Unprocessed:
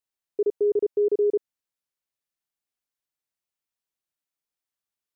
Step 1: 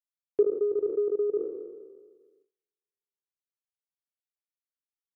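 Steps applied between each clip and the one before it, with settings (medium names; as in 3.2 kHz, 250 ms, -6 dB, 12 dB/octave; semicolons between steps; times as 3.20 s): spectral sustain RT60 1.68 s; gate -58 dBFS, range -18 dB; transient shaper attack +11 dB, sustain -6 dB; trim -7.5 dB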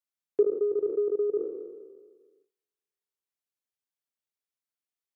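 high-pass 84 Hz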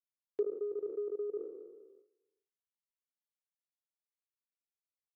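gate -52 dBFS, range -12 dB; bass shelf 390 Hz -6 dB; trim -7.5 dB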